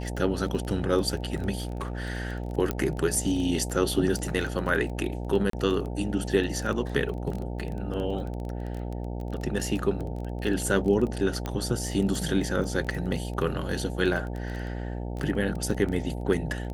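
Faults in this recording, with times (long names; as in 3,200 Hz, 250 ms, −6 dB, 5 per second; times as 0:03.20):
mains buzz 60 Hz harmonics 15 −33 dBFS
surface crackle 16 per second −31 dBFS
0:01.58–0:02.08: clipping −26.5 dBFS
0:02.71: click −13 dBFS
0:05.50–0:05.53: drop-out 33 ms
0:11.46: click −17 dBFS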